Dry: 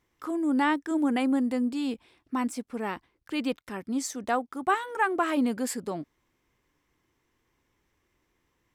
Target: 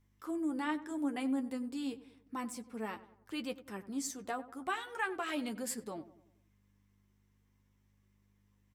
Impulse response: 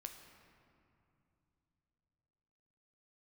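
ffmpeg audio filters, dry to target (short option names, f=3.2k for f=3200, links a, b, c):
-filter_complex "[0:a]aeval=exprs='val(0)+0.00112*(sin(2*PI*50*n/s)+sin(2*PI*2*50*n/s)/2+sin(2*PI*3*50*n/s)/3+sin(2*PI*4*50*n/s)/4+sin(2*PI*5*50*n/s)/5)':c=same,alimiter=limit=-18.5dB:level=0:latency=1:release=411,asettb=1/sr,asplit=3[a][b][c];[a]atrim=end=4.654[d];[b]atrim=start=4.65:end=5.49,asetpts=PTS-STARTPTS,afade=t=in:d=0.004:c=qsin,afade=t=out:st=0.836:d=0.004:c=qsin,equalizer=f=3.3k:w=0.66:g=9.5[e];[c]atrim=start=5.486[f];[d][e]acrossfade=d=0.004:c1=hsin:c2=qsin[g];[g][f]acrossfade=d=0.004:c1=qsin:c2=hsin,flanger=delay=9:depth=2.1:regen=32:speed=0.33:shape=sinusoidal,highshelf=f=6.1k:g=7,asplit=2[h][i];[i]adelay=95,lowpass=f=1.5k:p=1,volume=-15dB,asplit=2[j][k];[k]adelay=95,lowpass=f=1.5k:p=1,volume=0.51,asplit=2[l][m];[m]adelay=95,lowpass=f=1.5k:p=1,volume=0.51,asplit=2[n][o];[o]adelay=95,lowpass=f=1.5k:p=1,volume=0.51,asplit=2[p][q];[q]adelay=95,lowpass=f=1.5k:p=1,volume=0.51[r];[j][l][n][p][r]amix=inputs=5:normalize=0[s];[h][s]amix=inputs=2:normalize=0,volume=-5.5dB"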